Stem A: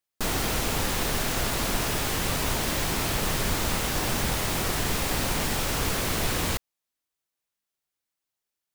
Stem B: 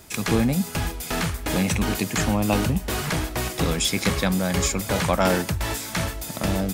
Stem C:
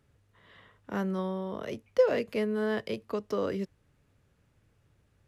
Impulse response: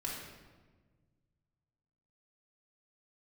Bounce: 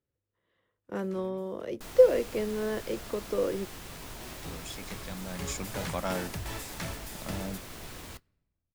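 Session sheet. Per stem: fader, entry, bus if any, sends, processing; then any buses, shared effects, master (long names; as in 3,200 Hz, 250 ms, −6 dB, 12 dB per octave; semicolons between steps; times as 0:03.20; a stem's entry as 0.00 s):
−18.0 dB, 1.60 s, send −14 dB, no processing
0:05.11 −20 dB → 0:05.53 −12 dB, 0.85 s, no send, automatic ducking −18 dB, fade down 1.75 s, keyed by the third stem
−5.0 dB, 0.00 s, no send, hollow resonant body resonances 350/500 Hz, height 10 dB, ringing for 40 ms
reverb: on, RT60 1.4 s, pre-delay 3 ms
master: noise gate −44 dBFS, range −16 dB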